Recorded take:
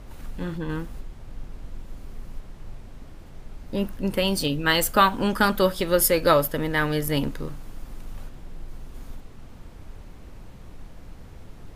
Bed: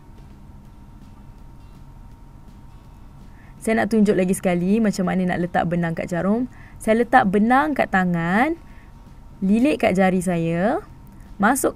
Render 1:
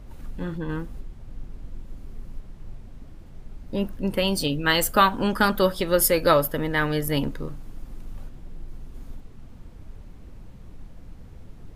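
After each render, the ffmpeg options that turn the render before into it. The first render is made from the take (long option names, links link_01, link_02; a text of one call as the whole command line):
ffmpeg -i in.wav -af "afftdn=noise_reduction=6:noise_floor=-44" out.wav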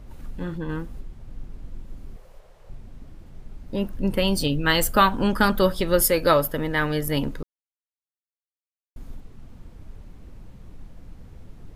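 ffmpeg -i in.wav -filter_complex "[0:a]asettb=1/sr,asplit=3[link_01][link_02][link_03];[link_01]atrim=end=2.164[link_04];[link_02]atrim=start=2.16:end=2.7,asetpts=PTS-STARTPTS,afade=type=in:duration=0.004:curve=qsin,afade=type=out:start_time=0.536:duration=0.004:curve=qsin,lowshelf=frequency=370:width_type=q:width=3:gain=-12[link_05];[link_03]atrim=start=2.696[link_06];[link_04][link_05]acrossfade=duration=0.004:curve1=hsin:curve2=qsin[link_07];[link_07][link_06]acrossfade=duration=0.004:curve1=qsin:curve2=hsin,asettb=1/sr,asplit=3[link_08][link_09][link_10];[link_08]atrim=end=3.944[link_11];[link_09]atrim=start=3.94:end=6.02,asetpts=PTS-STARTPTS,afade=type=in:duration=0.004:curve=qsin,afade=type=out:start_time=2.076:duration=0.004:curve=qsin,lowshelf=frequency=160:gain=6[link_12];[link_10]atrim=start=6.016[link_13];[link_11][link_12]acrossfade=duration=0.004:curve1=hsin:curve2=qsin[link_14];[link_14][link_13]acrossfade=duration=0.004:curve1=qsin:curve2=hsin,asplit=3[link_15][link_16][link_17];[link_15]atrim=end=7.43,asetpts=PTS-STARTPTS,afade=type=out:start_time=7.426:duration=0.004:curve=hsin[link_18];[link_16]atrim=start=7.43:end=8.96,asetpts=PTS-STARTPTS,volume=0[link_19];[link_17]atrim=start=8.96,asetpts=PTS-STARTPTS,afade=type=in:duration=0.004:curve=hsin[link_20];[link_18][link_19][link_20]concat=n=3:v=0:a=1" out.wav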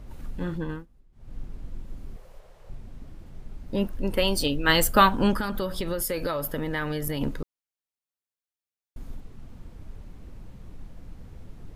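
ffmpeg -i in.wav -filter_complex "[0:a]asettb=1/sr,asplit=3[link_01][link_02][link_03];[link_01]atrim=end=3.874[link_04];[link_02]atrim=start=3.87:end=4.69,asetpts=PTS-STARTPTS,afade=type=in:duration=0.004:curve=qsin,afade=type=out:start_time=0.816:duration=0.004:curve=qsin,equalizer=frequency=160:width=1.5:gain=-9[link_05];[link_03]atrim=start=4.686[link_06];[link_04][link_05]acrossfade=duration=0.004:curve1=hsin:curve2=qsin[link_07];[link_07][link_06]acrossfade=duration=0.004:curve1=qsin:curve2=hsin,asettb=1/sr,asplit=3[link_08][link_09][link_10];[link_08]atrim=end=5.394[link_11];[link_09]atrim=start=5.39:end=7.21,asetpts=PTS-STARTPTS,afade=type=in:duration=0.004:curve=qsin,afade=type=out:start_time=1.816:duration=0.004:curve=qsin,acompressor=threshold=-24dB:ratio=10:attack=3.2:release=140:knee=1:detection=peak[link_12];[link_10]atrim=start=7.206[link_13];[link_11][link_12]acrossfade=duration=0.004:curve1=hsin:curve2=qsin[link_14];[link_14][link_13]acrossfade=duration=0.004:curve1=qsin:curve2=hsin,asplit=3[link_15][link_16][link_17];[link_15]atrim=end=0.86,asetpts=PTS-STARTPTS,afade=type=out:start_time=0.62:duration=0.24:silence=0.0841395[link_18];[link_16]atrim=start=0.86:end=1.12,asetpts=PTS-STARTPTS,volume=-21.5dB[link_19];[link_17]atrim=start=1.12,asetpts=PTS-STARTPTS,afade=type=in:duration=0.24:silence=0.0841395[link_20];[link_18][link_19][link_20]concat=n=3:v=0:a=1" out.wav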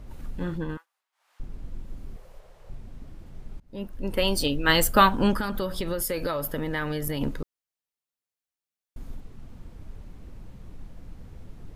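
ffmpeg -i in.wav -filter_complex "[0:a]asettb=1/sr,asplit=3[link_01][link_02][link_03];[link_01]atrim=end=0.774[link_04];[link_02]atrim=start=0.77:end=1.4,asetpts=PTS-STARTPTS,afade=type=in:duration=0.004:curve=qsin,afade=type=out:start_time=0.626:duration=0.004:curve=qsin,highpass=frequency=880:width=0.5412,highpass=frequency=880:width=1.3066[link_05];[link_03]atrim=start=1.396[link_06];[link_04][link_05]acrossfade=duration=0.004:curve1=hsin:curve2=qsin[link_07];[link_07][link_06]acrossfade=duration=0.004:curve1=qsin:curve2=hsin,asplit=2[link_08][link_09];[link_08]atrim=end=3.6,asetpts=PTS-STARTPTS,afade=type=out:start_time=3.596:duration=0.004:curve=hsin:silence=0.0630957[link_10];[link_09]atrim=start=3.6,asetpts=PTS-STARTPTS,afade=type=in:duration=0.67:silence=0.0630957[link_11];[link_10][link_11]concat=n=2:v=0:a=1" out.wav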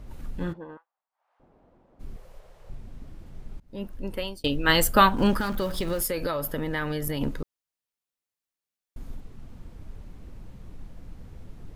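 ffmpeg -i in.wav -filter_complex "[0:a]asplit=3[link_01][link_02][link_03];[link_01]afade=type=out:start_time=0.52:duration=0.02[link_04];[link_02]bandpass=frequency=700:width_type=q:width=1.6,afade=type=in:start_time=0.52:duration=0.02,afade=type=out:start_time=1.99:duration=0.02[link_05];[link_03]afade=type=in:start_time=1.99:duration=0.02[link_06];[link_04][link_05][link_06]amix=inputs=3:normalize=0,asettb=1/sr,asplit=3[link_07][link_08][link_09];[link_07]atrim=end=5.174[link_10];[link_08]atrim=start=5.17:end=6.07,asetpts=PTS-STARTPTS,afade=type=in:duration=0.004:curve=qsin,afade=type=out:start_time=0.896:duration=0.004:curve=qsin,aeval=exprs='val(0)+0.5*0.0133*sgn(val(0))':channel_layout=same[link_11];[link_09]atrim=start=6.066[link_12];[link_10][link_11]acrossfade=duration=0.004:curve1=hsin:curve2=qsin[link_13];[link_13][link_12]acrossfade=duration=0.004:curve1=qsin:curve2=hsin,asplit=2[link_14][link_15];[link_14]atrim=end=4.44,asetpts=PTS-STARTPTS,afade=type=out:start_time=3.91:duration=0.53[link_16];[link_15]atrim=start=4.44,asetpts=PTS-STARTPTS,afade=type=in:duration=0.004:curve=hsin[link_17];[link_16][link_17]concat=n=2:v=0:a=1" out.wav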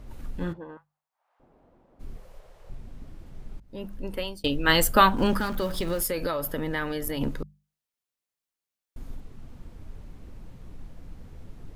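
ffmpeg -i in.wav -af "bandreject=frequency=50:width_type=h:width=6,bandreject=frequency=100:width_type=h:width=6,bandreject=frequency=150:width_type=h:width=6,bandreject=frequency=200:width_type=h:width=6" out.wav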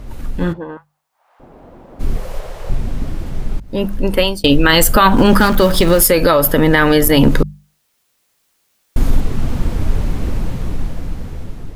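ffmpeg -i in.wav -af "dynaudnorm=framelen=790:gausssize=5:maxgain=16dB,alimiter=level_in=12.5dB:limit=-1dB:release=50:level=0:latency=1" out.wav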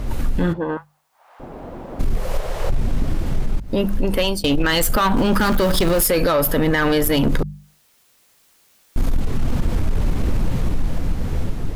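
ffmpeg -i in.wav -af "acontrast=57,alimiter=limit=-11dB:level=0:latency=1:release=271" out.wav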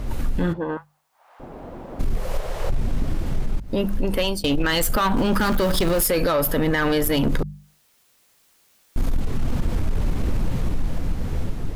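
ffmpeg -i in.wav -af "volume=-3dB" out.wav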